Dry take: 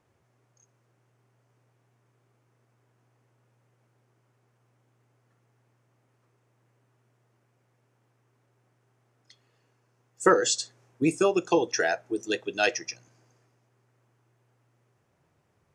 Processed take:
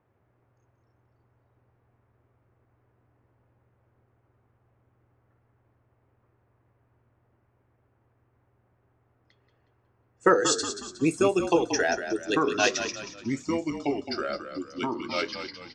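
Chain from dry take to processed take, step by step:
low-pass that shuts in the quiet parts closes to 1,900 Hz, open at −23 dBFS
echo with shifted repeats 182 ms, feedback 41%, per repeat −43 Hz, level −9 dB
delay with pitch and tempo change per echo 157 ms, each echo −3 semitones, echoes 3, each echo −6 dB

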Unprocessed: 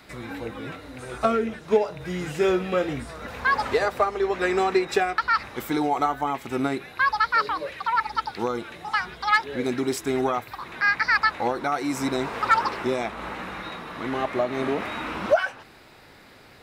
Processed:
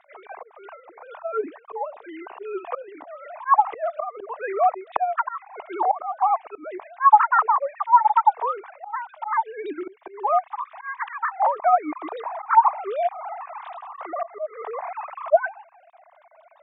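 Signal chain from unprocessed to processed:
three sine waves on the formant tracks
volume swells 247 ms
flat-topped bell 850 Hz +14 dB 1.1 octaves
level −1 dB

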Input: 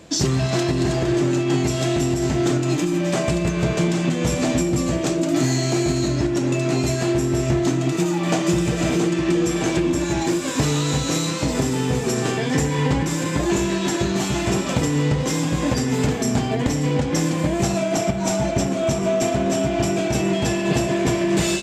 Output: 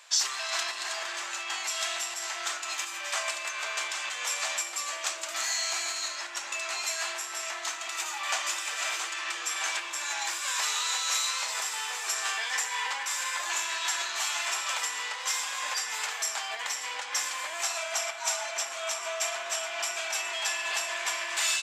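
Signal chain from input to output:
high-pass filter 1,000 Hz 24 dB per octave
level −1 dB

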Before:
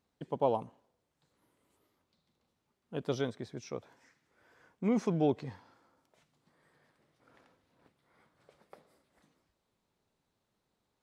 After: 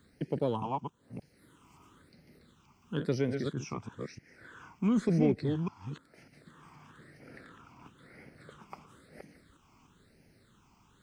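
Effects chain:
delay that plays each chunk backwards 299 ms, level −6 dB
all-pass phaser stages 8, 1 Hz, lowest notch 510–1,100 Hz
in parallel at −10 dB: asymmetric clip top −31 dBFS
on the sum: multiband upward and downward compressor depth 40%
level +5 dB

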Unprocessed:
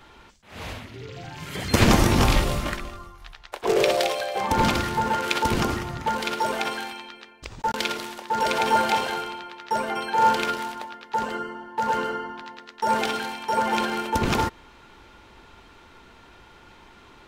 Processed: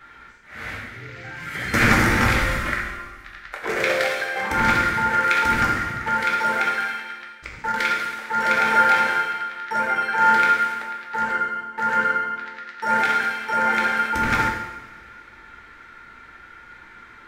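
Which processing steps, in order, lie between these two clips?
flat-topped bell 1,700 Hz +13.5 dB 1 octave
coupled-rooms reverb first 0.93 s, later 2.4 s, from −17 dB, DRR −1 dB
level −6 dB

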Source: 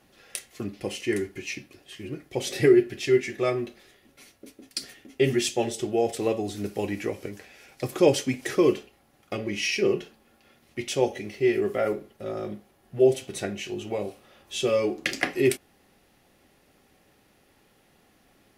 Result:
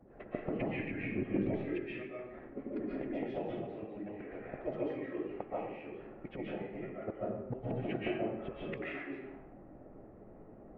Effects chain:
harmonic and percussive parts rebalanced harmonic −10 dB
low-pass filter 2,300 Hz 24 dB per octave
low-pass that shuts in the quiet parts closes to 600 Hz, open at −27 dBFS
dynamic equaliser 290 Hz, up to +6 dB, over −48 dBFS, Q 5.8
pitch vibrato 2.8 Hz 15 cents
gate with flip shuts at −31 dBFS, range −29 dB
phase-vocoder stretch with locked phases 0.58×
convolution reverb RT60 0.95 s, pre-delay 100 ms, DRR −7.5 dB
level +8.5 dB

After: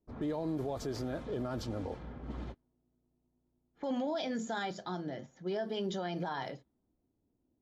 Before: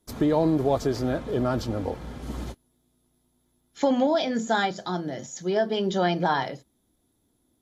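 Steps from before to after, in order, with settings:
low-pass that shuts in the quiet parts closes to 720 Hz, open at −22.5 dBFS
brickwall limiter −20 dBFS, peak gain reduction 10 dB
level −7.5 dB

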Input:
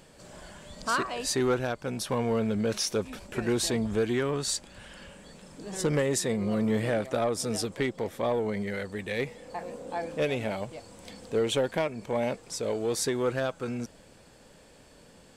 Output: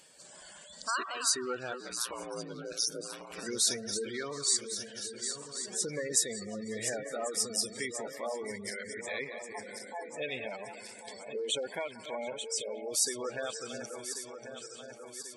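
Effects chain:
feedback delay that plays each chunk backwards 544 ms, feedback 75%, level −8.5 dB
0:01.80–0:03.43: ring modulation 59 Hz
spectral tilt +3.5 dB per octave
gate on every frequency bin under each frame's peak −15 dB strong
echo through a band-pass that steps 182 ms, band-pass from 1,200 Hz, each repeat 0.7 octaves, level −10.5 dB
level −6 dB

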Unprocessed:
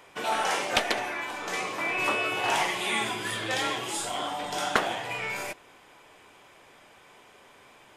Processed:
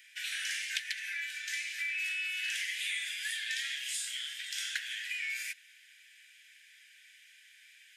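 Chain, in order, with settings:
Butterworth high-pass 1,600 Hz 96 dB per octave
downward compressor 4 to 1, threshold −33 dBFS, peak gain reduction 11 dB

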